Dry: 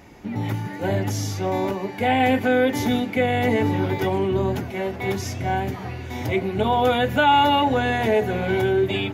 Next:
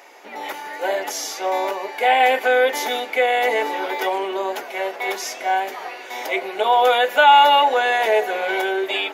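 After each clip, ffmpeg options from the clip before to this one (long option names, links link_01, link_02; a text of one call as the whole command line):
ffmpeg -i in.wav -af "highpass=frequency=490:width=0.5412,highpass=frequency=490:width=1.3066,volume=5.5dB" out.wav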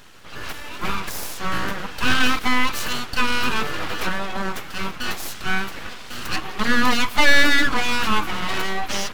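ffmpeg -i in.wav -af "aeval=exprs='abs(val(0))':channel_layout=same,volume=1dB" out.wav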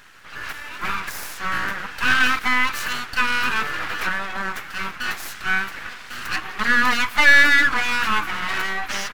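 ffmpeg -i in.wav -af "firequalizer=gain_entry='entry(490,0);entry(1600,12);entry(3200,4)':delay=0.05:min_phase=1,volume=-6.5dB" out.wav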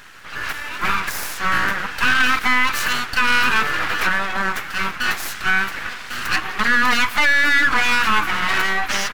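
ffmpeg -i in.wav -af "alimiter=limit=-12dB:level=0:latency=1:release=65,volume=5.5dB" out.wav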